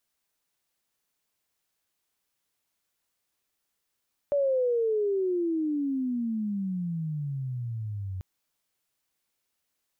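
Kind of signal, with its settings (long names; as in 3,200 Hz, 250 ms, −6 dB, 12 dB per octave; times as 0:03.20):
pitch glide with a swell sine, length 3.89 s, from 580 Hz, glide −32 semitones, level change −10 dB, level −21.5 dB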